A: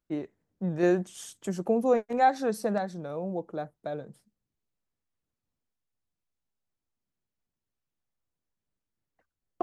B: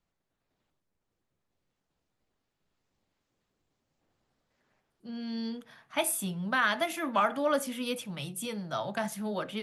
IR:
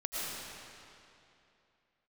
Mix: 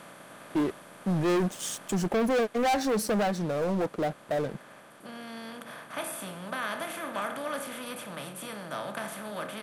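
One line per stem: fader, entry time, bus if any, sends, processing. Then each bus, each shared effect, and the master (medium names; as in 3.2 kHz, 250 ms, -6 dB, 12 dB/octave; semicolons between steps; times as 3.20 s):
+2.0 dB, 0.45 s, no send, waveshaping leveller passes 5; auto duck -11 dB, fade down 0.70 s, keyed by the second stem
1.86 s -4.5 dB -> 2.18 s -11.5 dB, 0.00 s, send -19 dB, spectral levelling over time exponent 0.4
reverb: on, RT60 2.8 s, pre-delay 70 ms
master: none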